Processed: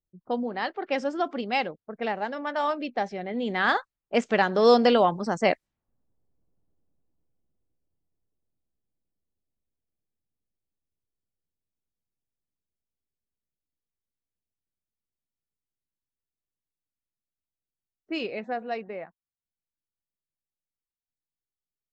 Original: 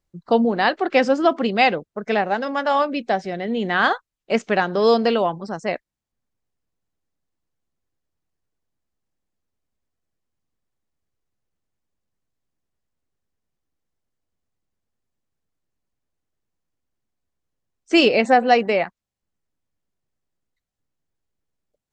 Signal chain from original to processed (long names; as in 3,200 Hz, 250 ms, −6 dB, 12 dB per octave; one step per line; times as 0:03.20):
source passing by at 0:06.56, 14 m/s, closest 9.6 metres
low-pass that shuts in the quiet parts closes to 580 Hz, open at −31 dBFS
level +8 dB